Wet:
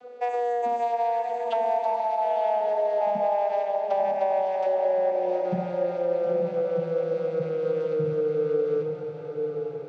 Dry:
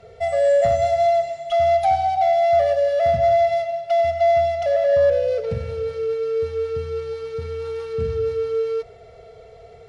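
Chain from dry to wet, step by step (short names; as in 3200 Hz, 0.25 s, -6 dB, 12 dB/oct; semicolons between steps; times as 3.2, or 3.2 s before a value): vocoder on a gliding note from B3, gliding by -10 st; compressor, threshold -23 dBFS, peak gain reduction 10.5 dB; diffused feedback echo 0.931 s, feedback 42%, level -6 dB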